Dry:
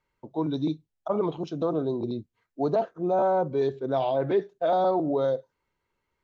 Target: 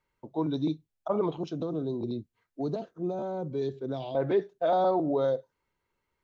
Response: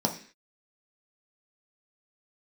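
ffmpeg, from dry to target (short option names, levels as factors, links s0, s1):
-filter_complex "[0:a]asettb=1/sr,asplit=3[s0][s1][s2];[s0]atrim=end=1.604[s3];[s1]atrim=start=1.6:end=4.15,asetpts=PTS-STARTPTS,afade=t=in:d=0.004:c=qsin,afade=t=out:st=2.546:d=0.004:c=qsin,acrossover=split=370|3000[s4][s5][s6];[s5]acompressor=threshold=0.0126:ratio=6[s7];[s4][s7][s6]amix=inputs=3:normalize=0[s8];[s2]atrim=start=4.146[s9];[s3][s8]acrossfade=d=0.004:c1=hsin:c2=qsin[s10];[s10][s9]acrossfade=d=0.004:c1=qsin:c2=hsin,volume=0.841"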